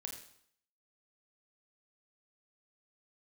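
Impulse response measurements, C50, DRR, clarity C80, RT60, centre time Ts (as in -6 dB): 6.0 dB, 1.0 dB, 8.5 dB, 0.65 s, 28 ms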